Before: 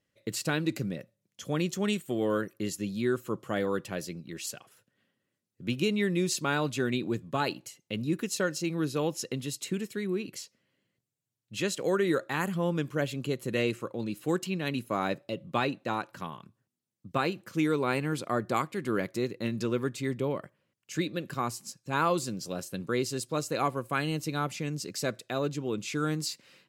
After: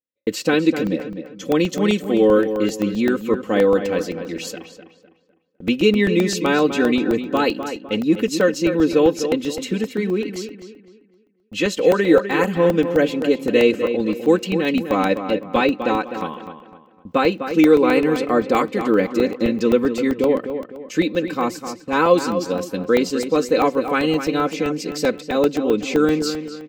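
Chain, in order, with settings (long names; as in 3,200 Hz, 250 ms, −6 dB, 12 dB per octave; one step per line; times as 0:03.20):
graphic EQ with 15 bands 400 Hz +11 dB, 2,500 Hz +3 dB, 10,000 Hz −12 dB
noise gate −53 dBFS, range −31 dB
comb filter 3.9 ms, depth 82%
on a send: feedback echo with a low-pass in the loop 253 ms, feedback 36%, low-pass 3,200 Hz, level −9 dB
on the sum: regular buffer underruns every 0.13 s, samples 64, zero, from 0:00.87
level +6 dB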